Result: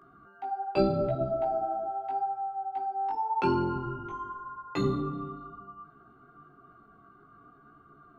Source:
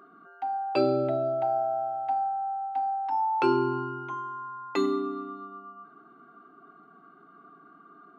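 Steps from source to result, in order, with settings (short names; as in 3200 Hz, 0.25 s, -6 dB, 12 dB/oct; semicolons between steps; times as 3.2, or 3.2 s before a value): octaver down 1 oct, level 0 dB; chorus voices 2, 0.82 Hz, delay 17 ms, depth 3.4 ms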